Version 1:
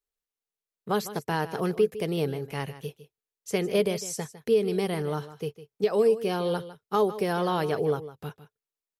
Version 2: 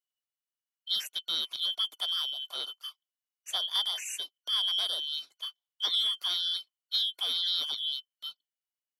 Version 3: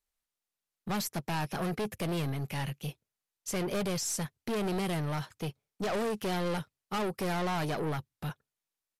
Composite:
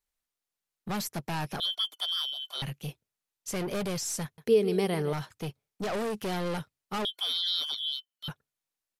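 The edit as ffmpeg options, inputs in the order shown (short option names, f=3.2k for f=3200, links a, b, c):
-filter_complex "[1:a]asplit=2[a][b];[2:a]asplit=4[c][d][e][f];[c]atrim=end=1.602[g];[a]atrim=start=1.598:end=2.622[h];[d]atrim=start=2.618:end=4.382[i];[0:a]atrim=start=4.378:end=5.132[j];[e]atrim=start=5.128:end=7.052[k];[b]atrim=start=7.048:end=8.282[l];[f]atrim=start=8.278[m];[g][h]acrossfade=d=0.004:c1=hsin:c2=hsin[n];[n][i]acrossfade=d=0.004:c1=hsin:c2=hsin[o];[o][j]acrossfade=d=0.004:c1=hsin:c2=hsin[p];[p][k]acrossfade=d=0.004:c1=hsin:c2=hsin[q];[q][l]acrossfade=d=0.004:c1=hsin:c2=hsin[r];[r][m]acrossfade=d=0.004:c1=hsin:c2=hsin"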